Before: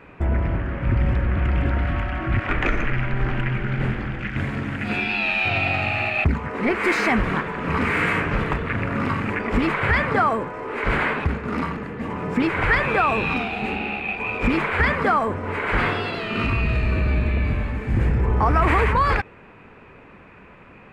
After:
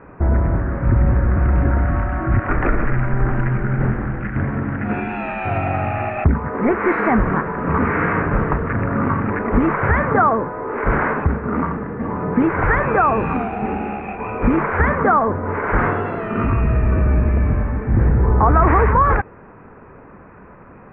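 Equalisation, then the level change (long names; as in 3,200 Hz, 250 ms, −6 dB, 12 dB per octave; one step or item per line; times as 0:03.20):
low-pass filter 1,600 Hz 24 dB per octave
+5.0 dB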